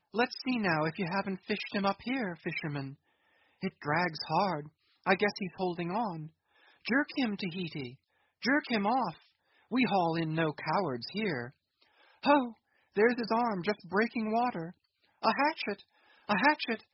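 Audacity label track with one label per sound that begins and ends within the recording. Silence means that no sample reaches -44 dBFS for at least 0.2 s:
3.630000	4.670000	sound
5.060000	6.270000	sound
6.850000	7.940000	sound
8.420000	9.130000	sound
9.710000	11.490000	sound
12.230000	12.520000	sound
12.960000	14.710000	sound
15.220000	15.810000	sound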